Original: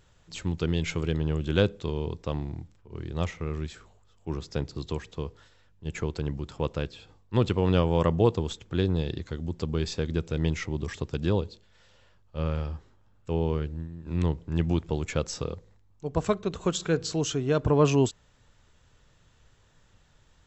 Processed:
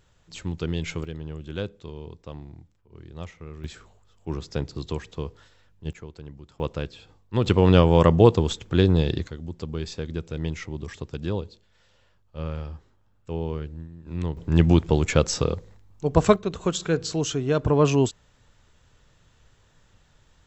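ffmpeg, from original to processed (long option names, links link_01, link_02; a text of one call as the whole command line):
ffmpeg -i in.wav -af "asetnsamples=nb_out_samples=441:pad=0,asendcmd='1.04 volume volume -8dB;3.64 volume volume 2dB;5.93 volume volume -10.5dB;6.6 volume volume 0.5dB;7.46 volume volume 7dB;9.28 volume volume -2.5dB;14.37 volume volume 8.5dB;16.36 volume volume 2dB',volume=-1dB" out.wav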